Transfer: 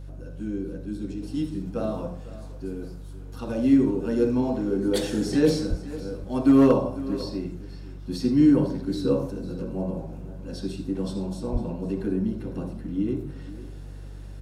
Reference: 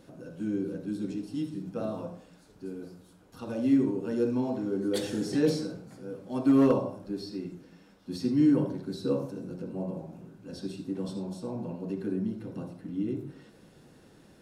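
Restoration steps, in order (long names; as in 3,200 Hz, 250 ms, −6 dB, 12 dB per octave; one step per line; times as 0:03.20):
hum removal 48.4 Hz, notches 3
high-pass at the plosives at 0:05.69/0:11.52
echo removal 502 ms −16.5 dB
level correction −5 dB, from 0:01.22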